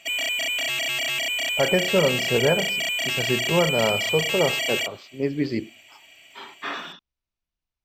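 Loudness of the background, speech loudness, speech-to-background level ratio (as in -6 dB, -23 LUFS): -23.5 LUFS, -25.5 LUFS, -2.0 dB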